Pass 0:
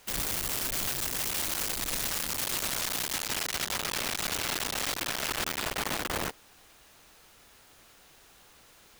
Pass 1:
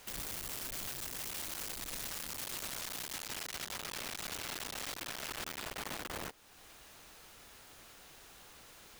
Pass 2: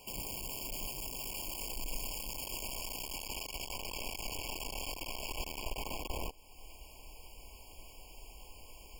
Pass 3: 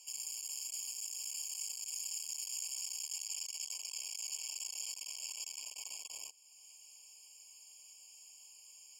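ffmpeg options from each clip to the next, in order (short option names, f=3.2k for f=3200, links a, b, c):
-af "alimiter=level_in=9dB:limit=-24dB:level=0:latency=1:release=413,volume=-9dB,volume=1dB"
-af "asubboost=boost=8:cutoff=51,afftfilt=real='re*eq(mod(floor(b*sr/1024/1100),2),0)':imag='im*eq(mod(floor(b*sr/1024/1100),2),0)':win_size=1024:overlap=0.75,volume=3dB"
-af "bandpass=f=6.7k:t=q:w=3.3:csg=0,volume=9dB"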